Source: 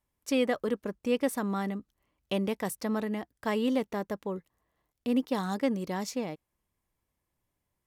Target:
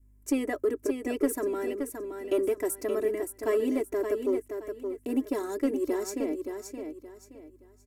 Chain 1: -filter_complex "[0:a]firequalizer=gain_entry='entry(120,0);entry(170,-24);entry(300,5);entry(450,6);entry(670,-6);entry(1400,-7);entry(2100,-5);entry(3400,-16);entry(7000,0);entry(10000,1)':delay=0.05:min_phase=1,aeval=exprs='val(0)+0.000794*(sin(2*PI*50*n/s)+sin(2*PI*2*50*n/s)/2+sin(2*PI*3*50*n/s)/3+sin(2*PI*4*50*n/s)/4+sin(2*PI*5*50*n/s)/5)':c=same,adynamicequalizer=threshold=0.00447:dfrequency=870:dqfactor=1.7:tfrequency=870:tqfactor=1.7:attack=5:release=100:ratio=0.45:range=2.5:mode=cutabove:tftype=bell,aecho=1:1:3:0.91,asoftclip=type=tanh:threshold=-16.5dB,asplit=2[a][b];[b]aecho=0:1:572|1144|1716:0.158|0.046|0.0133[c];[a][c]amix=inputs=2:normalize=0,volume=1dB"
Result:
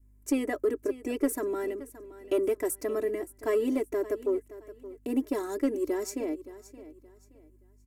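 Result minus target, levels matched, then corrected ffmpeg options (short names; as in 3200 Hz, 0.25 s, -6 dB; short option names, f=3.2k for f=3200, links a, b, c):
echo-to-direct -9.5 dB
-filter_complex "[0:a]firequalizer=gain_entry='entry(120,0);entry(170,-24);entry(300,5);entry(450,6);entry(670,-6);entry(1400,-7);entry(2100,-5);entry(3400,-16);entry(7000,0);entry(10000,1)':delay=0.05:min_phase=1,aeval=exprs='val(0)+0.000794*(sin(2*PI*50*n/s)+sin(2*PI*2*50*n/s)/2+sin(2*PI*3*50*n/s)/3+sin(2*PI*4*50*n/s)/4+sin(2*PI*5*50*n/s)/5)':c=same,adynamicequalizer=threshold=0.00447:dfrequency=870:dqfactor=1.7:tfrequency=870:tqfactor=1.7:attack=5:release=100:ratio=0.45:range=2.5:mode=cutabove:tftype=bell,aecho=1:1:3:0.91,asoftclip=type=tanh:threshold=-16.5dB,asplit=2[a][b];[b]aecho=0:1:572|1144|1716|2288:0.473|0.137|0.0398|0.0115[c];[a][c]amix=inputs=2:normalize=0,volume=1dB"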